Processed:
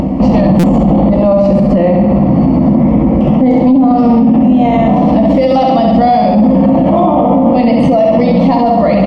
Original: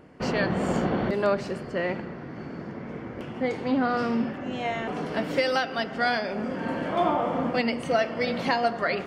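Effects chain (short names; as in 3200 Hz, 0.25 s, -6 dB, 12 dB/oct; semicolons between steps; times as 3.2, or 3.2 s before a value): HPF 52 Hz; on a send: flutter echo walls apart 11.5 m, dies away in 0.78 s; on the sum: compressor, threshold -26 dBFS, peak gain reduction 9 dB; tilt -4 dB/oct; fixed phaser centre 410 Hz, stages 6; doubler 15 ms -7.5 dB; upward compressor, threshold -34 dBFS; high shelf 4200 Hz -7 dB; stuck buffer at 0.59, samples 256, times 7; maximiser +27.5 dB; gain -1 dB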